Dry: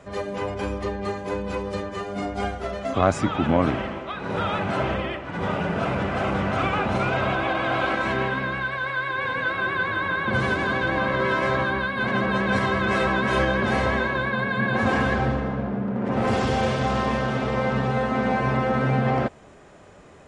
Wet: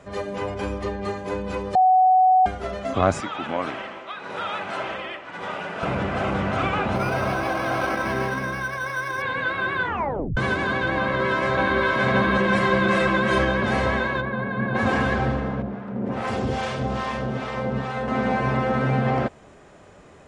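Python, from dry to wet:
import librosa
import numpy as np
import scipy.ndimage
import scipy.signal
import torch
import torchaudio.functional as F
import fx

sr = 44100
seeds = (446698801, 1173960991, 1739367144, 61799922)

y = fx.highpass(x, sr, hz=860.0, slope=6, at=(3.2, 5.83))
y = fx.resample_linear(y, sr, factor=6, at=(6.95, 9.22))
y = fx.echo_throw(y, sr, start_s=11.0, length_s=0.81, ms=570, feedback_pct=55, wet_db=-0.5)
y = fx.comb(y, sr, ms=5.7, depth=0.59, at=(12.38, 13.38))
y = fx.lowpass(y, sr, hz=1100.0, slope=6, at=(14.2, 14.74), fade=0.02)
y = fx.harmonic_tremolo(y, sr, hz=2.4, depth_pct=70, crossover_hz=680.0, at=(15.62, 18.08))
y = fx.edit(y, sr, fx.bleep(start_s=1.75, length_s=0.71, hz=746.0, db=-12.5),
    fx.tape_stop(start_s=9.81, length_s=0.56), tone=tone)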